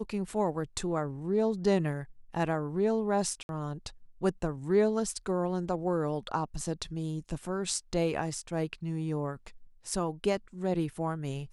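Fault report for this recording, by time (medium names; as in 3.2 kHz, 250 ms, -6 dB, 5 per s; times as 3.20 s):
3.43–3.49 s: dropout 61 ms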